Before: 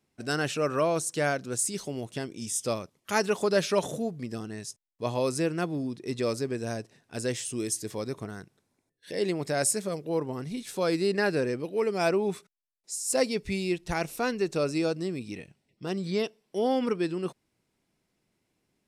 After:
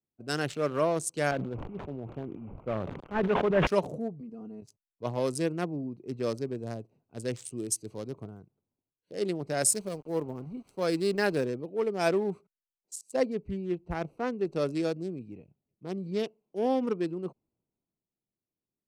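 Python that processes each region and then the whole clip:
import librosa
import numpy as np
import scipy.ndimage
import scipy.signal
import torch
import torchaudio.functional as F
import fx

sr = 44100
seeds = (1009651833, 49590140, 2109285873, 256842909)

y = fx.chain(x, sr, fx.cvsd(bps=16000),
    fx.sustainer(db_per_s=37.0), at=(1.31, 3.67))
y = fx.chain(y, sr, fx.comb(ms=4.3, depth=0.94),
    fx.level_steps(step_db=9), at=(4.2, 4.62))
y = fx.chain(y, sr, fx.high_shelf(hz=7600.0, db=4.0),
    fx.sample_gate(floor_db=-42.0), at=(9.72, 11.46))
y = fx.chain(y, sr, fx.highpass(hz=42.0, slope=12),
    fx.high_shelf(hz=2900.0, db=-10.5), at=(13.01, 14.45))
y = fx.wiener(y, sr, points=25)
y = fx.band_widen(y, sr, depth_pct=40)
y = y * 10.0 ** (-1.5 / 20.0)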